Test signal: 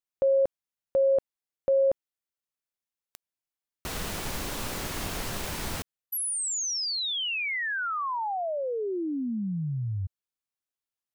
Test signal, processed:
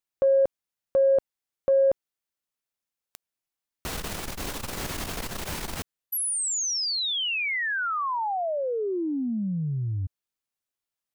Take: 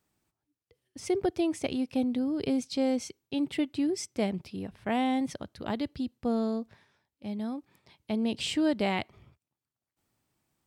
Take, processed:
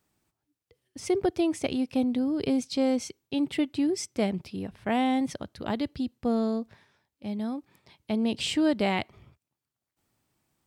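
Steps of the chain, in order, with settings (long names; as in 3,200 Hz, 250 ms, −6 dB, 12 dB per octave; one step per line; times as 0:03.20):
saturating transformer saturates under 140 Hz
level +2.5 dB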